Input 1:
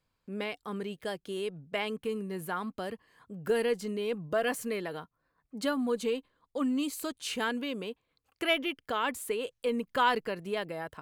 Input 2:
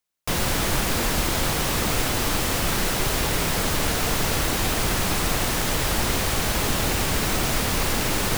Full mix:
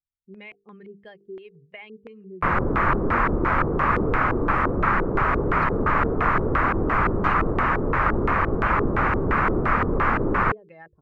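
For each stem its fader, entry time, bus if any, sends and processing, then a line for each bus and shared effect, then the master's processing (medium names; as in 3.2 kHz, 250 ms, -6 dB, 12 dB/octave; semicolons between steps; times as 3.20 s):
-1.5 dB, 0.00 s, no send, expander on every frequency bin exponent 1.5; hum notches 50/100/150/200/250/300/350/400/450 Hz; compression 12:1, threshold -40 dBFS, peak gain reduction 18 dB
+0.5 dB, 2.15 s, no send, FFT filter 740 Hz 0 dB, 1.2 kHz +12 dB, 3.4 kHz -20 dB, 9.1 kHz -14 dB, 13 kHz -29 dB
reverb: none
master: LFO low-pass square 2.9 Hz 410–2300 Hz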